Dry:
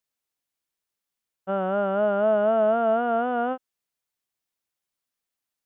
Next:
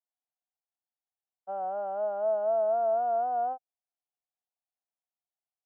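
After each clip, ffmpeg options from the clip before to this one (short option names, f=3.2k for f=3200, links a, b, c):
-af "bandpass=f=740:t=q:w=6.3:csg=0"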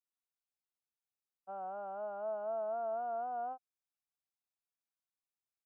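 -af "aecho=1:1:0.8:0.45,volume=-6dB"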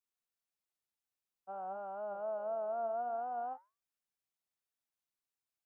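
-af "flanger=delay=4.1:depth=9:regen=89:speed=0.52:shape=sinusoidal,volume=4.5dB"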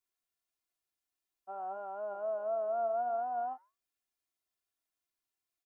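-af "aecho=1:1:2.9:0.64"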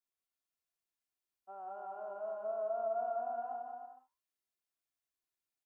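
-af "aecho=1:1:180|306|394.2|455.9|499.2:0.631|0.398|0.251|0.158|0.1,volume=-6.5dB"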